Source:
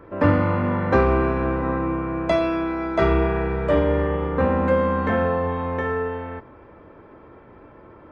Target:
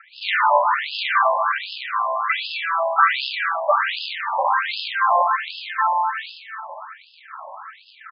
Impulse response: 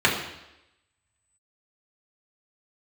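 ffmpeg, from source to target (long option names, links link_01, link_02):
-filter_complex "[0:a]bandreject=frequency=48:width_type=h:width=4,bandreject=frequency=96:width_type=h:width=4,bandreject=frequency=144:width_type=h:width=4,bandreject=frequency=192:width_type=h:width=4,bandreject=frequency=240:width_type=h:width=4,bandreject=frequency=288:width_type=h:width=4,bandreject=frequency=336:width_type=h:width=4,bandreject=frequency=384:width_type=h:width=4,bandreject=frequency=432:width_type=h:width=4,bandreject=frequency=480:width_type=h:width=4,bandreject=frequency=528:width_type=h:width=4,asplit=2[link_01][link_02];[link_02]asplit=3[link_03][link_04][link_05];[link_03]adelay=148,afreqshift=-86,volume=-21.5dB[link_06];[link_04]adelay=296,afreqshift=-172,volume=-28.4dB[link_07];[link_05]adelay=444,afreqshift=-258,volume=-35.4dB[link_08];[link_06][link_07][link_08]amix=inputs=3:normalize=0[link_09];[link_01][link_09]amix=inputs=2:normalize=0,asoftclip=type=hard:threshold=-12.5dB[link_10];[1:a]atrim=start_sample=2205,afade=type=out:start_time=0.37:duration=0.01,atrim=end_sample=16758,asetrate=31311,aresample=44100[link_11];[link_10][link_11]afir=irnorm=-1:irlink=0,areverse,acompressor=mode=upward:threshold=-13dB:ratio=2.5,areverse,acrusher=bits=3:mode=log:mix=0:aa=0.000001,afftfilt=real='re*between(b*sr/1024,770*pow(3700/770,0.5+0.5*sin(2*PI*1.3*pts/sr))/1.41,770*pow(3700/770,0.5+0.5*sin(2*PI*1.3*pts/sr))*1.41)':imag='im*between(b*sr/1024,770*pow(3700/770,0.5+0.5*sin(2*PI*1.3*pts/sr))/1.41,770*pow(3700/770,0.5+0.5*sin(2*PI*1.3*pts/sr))*1.41)':win_size=1024:overlap=0.75,volume=-8dB"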